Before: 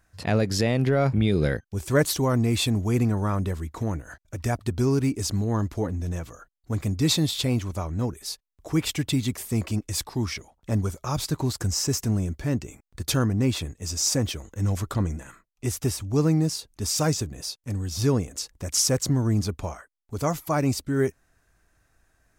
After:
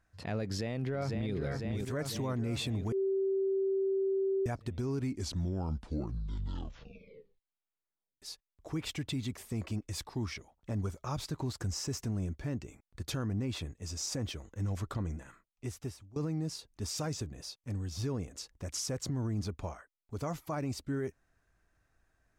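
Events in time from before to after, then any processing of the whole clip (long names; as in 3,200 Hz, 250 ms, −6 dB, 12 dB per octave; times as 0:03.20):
0:00.44–0:01.34: delay throw 500 ms, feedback 60%, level −6 dB
0:02.92–0:04.46: beep over 387 Hz −20 dBFS
0:04.96: tape stop 3.26 s
0:15.11–0:16.16: fade out equal-power, to −23.5 dB
whole clip: high-shelf EQ 7,200 Hz −11 dB; brickwall limiter −19.5 dBFS; level −7.5 dB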